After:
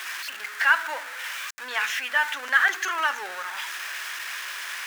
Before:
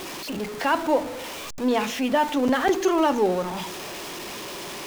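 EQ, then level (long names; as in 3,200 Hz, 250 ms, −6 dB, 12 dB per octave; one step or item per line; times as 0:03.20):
high-pass with resonance 1,600 Hz, resonance Q 3.8
parametric band 4,400 Hz −2 dB
0.0 dB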